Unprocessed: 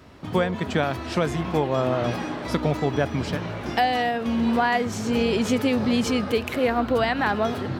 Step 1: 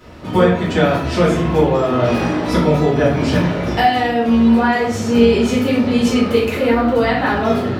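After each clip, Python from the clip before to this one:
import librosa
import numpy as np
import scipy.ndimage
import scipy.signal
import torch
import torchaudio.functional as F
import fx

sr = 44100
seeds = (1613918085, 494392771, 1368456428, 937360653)

y = fx.rider(x, sr, range_db=10, speed_s=0.5)
y = fx.room_shoebox(y, sr, seeds[0], volume_m3=89.0, walls='mixed', distance_m=1.9)
y = F.gain(torch.from_numpy(y), -1.5).numpy()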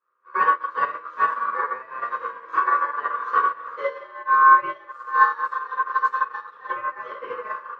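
y = x * np.sin(2.0 * np.pi * 1300.0 * np.arange(len(x)) / sr)
y = fx.double_bandpass(y, sr, hz=750.0, octaves=1.2)
y = fx.upward_expand(y, sr, threshold_db=-41.0, expansion=2.5)
y = F.gain(torch.from_numpy(y), 9.0).numpy()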